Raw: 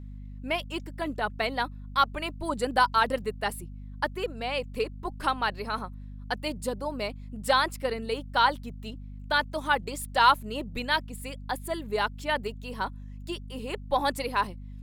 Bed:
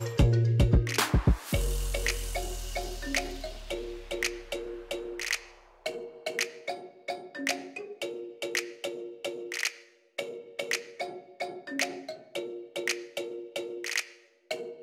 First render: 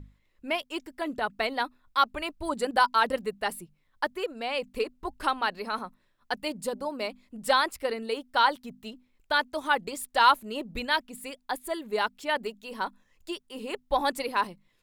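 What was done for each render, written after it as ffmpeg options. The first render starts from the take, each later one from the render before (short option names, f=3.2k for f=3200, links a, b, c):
-af "bandreject=f=50:t=h:w=6,bandreject=f=100:t=h:w=6,bandreject=f=150:t=h:w=6,bandreject=f=200:t=h:w=6,bandreject=f=250:t=h:w=6"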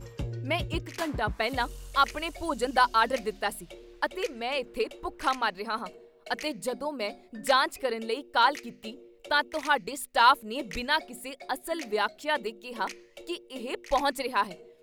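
-filter_complex "[1:a]volume=-12dB[a];[0:a][a]amix=inputs=2:normalize=0"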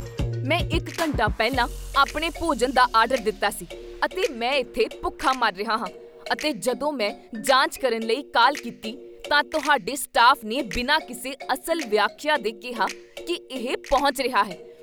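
-filter_complex "[0:a]asplit=2[a][b];[b]alimiter=limit=-18.5dB:level=0:latency=1:release=127,volume=3dB[c];[a][c]amix=inputs=2:normalize=0,acompressor=mode=upward:threshold=-31dB:ratio=2.5"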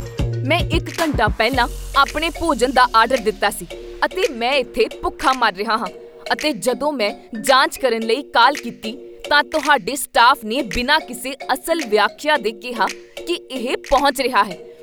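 -af "volume=5.5dB,alimiter=limit=-2dB:level=0:latency=1"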